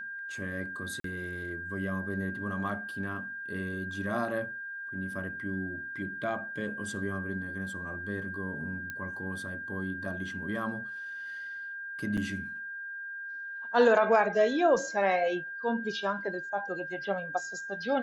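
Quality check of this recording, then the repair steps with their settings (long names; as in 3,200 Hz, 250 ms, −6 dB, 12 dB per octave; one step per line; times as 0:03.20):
whistle 1,600 Hz −37 dBFS
0:01.00–0:01.04: drop-out 43 ms
0:08.90: click −23 dBFS
0:12.17–0:12.18: drop-out 6.1 ms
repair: click removal
notch filter 1,600 Hz, Q 30
repair the gap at 0:01.00, 43 ms
repair the gap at 0:12.17, 6.1 ms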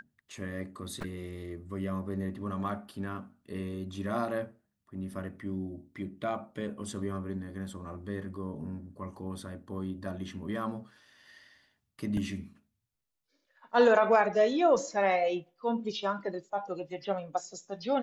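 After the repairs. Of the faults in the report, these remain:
none of them is left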